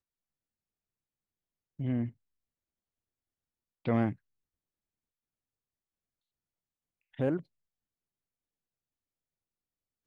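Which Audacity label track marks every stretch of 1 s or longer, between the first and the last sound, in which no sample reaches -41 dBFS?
2.090000	3.850000	silence
4.120000	7.190000	silence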